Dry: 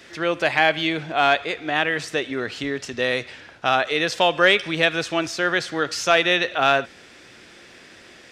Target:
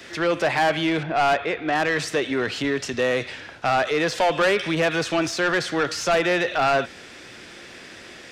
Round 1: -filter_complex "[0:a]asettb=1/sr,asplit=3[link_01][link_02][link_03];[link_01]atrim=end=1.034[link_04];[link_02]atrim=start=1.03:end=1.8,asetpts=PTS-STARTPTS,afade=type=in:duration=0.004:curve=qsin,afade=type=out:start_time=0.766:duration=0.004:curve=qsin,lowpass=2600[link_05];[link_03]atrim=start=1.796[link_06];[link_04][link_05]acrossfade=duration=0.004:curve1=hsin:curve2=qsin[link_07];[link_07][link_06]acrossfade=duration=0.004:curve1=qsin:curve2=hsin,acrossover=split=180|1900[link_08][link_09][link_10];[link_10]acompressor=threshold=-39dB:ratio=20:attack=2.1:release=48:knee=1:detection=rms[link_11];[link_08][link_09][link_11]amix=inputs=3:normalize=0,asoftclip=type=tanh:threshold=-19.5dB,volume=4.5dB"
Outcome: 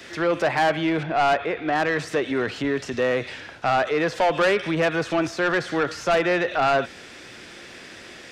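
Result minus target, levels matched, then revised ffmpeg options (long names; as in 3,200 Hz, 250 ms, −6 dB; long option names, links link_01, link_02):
downward compressor: peak gain reduction +9 dB
-filter_complex "[0:a]asettb=1/sr,asplit=3[link_01][link_02][link_03];[link_01]atrim=end=1.034[link_04];[link_02]atrim=start=1.03:end=1.8,asetpts=PTS-STARTPTS,afade=type=in:duration=0.004:curve=qsin,afade=type=out:start_time=0.766:duration=0.004:curve=qsin,lowpass=2600[link_05];[link_03]atrim=start=1.796[link_06];[link_04][link_05]acrossfade=duration=0.004:curve1=hsin:curve2=qsin[link_07];[link_07][link_06]acrossfade=duration=0.004:curve1=qsin:curve2=hsin,acrossover=split=180|1900[link_08][link_09][link_10];[link_10]acompressor=threshold=-29.5dB:ratio=20:attack=2.1:release=48:knee=1:detection=rms[link_11];[link_08][link_09][link_11]amix=inputs=3:normalize=0,asoftclip=type=tanh:threshold=-19.5dB,volume=4.5dB"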